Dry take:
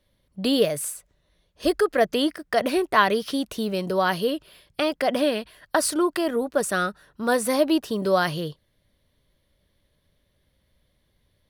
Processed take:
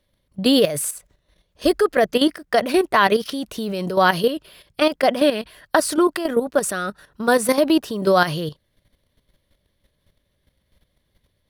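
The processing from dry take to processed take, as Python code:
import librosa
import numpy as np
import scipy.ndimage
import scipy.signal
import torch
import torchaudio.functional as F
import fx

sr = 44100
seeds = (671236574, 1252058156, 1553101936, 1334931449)

y = fx.level_steps(x, sr, step_db=11)
y = y * 10.0 ** (8.0 / 20.0)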